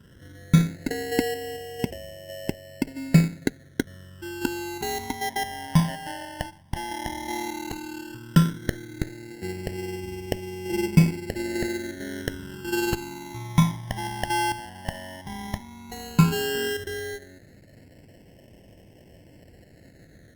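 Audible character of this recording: aliases and images of a low sample rate 1.2 kHz, jitter 0%; phasing stages 12, 0.12 Hz, lowest notch 410–1300 Hz; Opus

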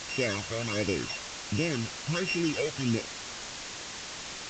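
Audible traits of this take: a buzz of ramps at a fixed pitch in blocks of 16 samples; phasing stages 12, 1.4 Hz, lowest notch 270–1300 Hz; a quantiser's noise floor 6-bit, dither triangular; µ-law

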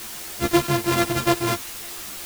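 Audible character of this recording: a buzz of ramps at a fixed pitch in blocks of 128 samples; tremolo saw down 1.1 Hz, depth 35%; a quantiser's noise floor 6-bit, dither triangular; a shimmering, thickened sound

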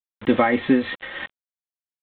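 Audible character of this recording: a quantiser's noise floor 6-bit, dither none; tremolo triangle 3.4 Hz, depth 55%; G.726

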